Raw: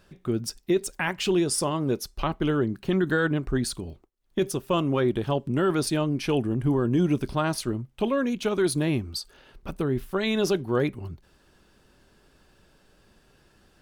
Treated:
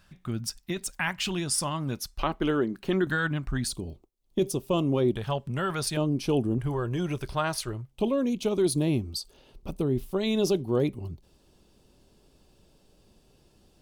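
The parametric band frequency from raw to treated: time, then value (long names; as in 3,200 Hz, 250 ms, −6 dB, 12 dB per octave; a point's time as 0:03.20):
parametric band −14.5 dB 0.96 octaves
410 Hz
from 0:02.19 100 Hz
from 0:03.07 410 Hz
from 0:03.68 1,600 Hz
from 0:05.16 310 Hz
from 0:05.97 1,800 Hz
from 0:06.58 250 Hz
from 0:07.91 1,600 Hz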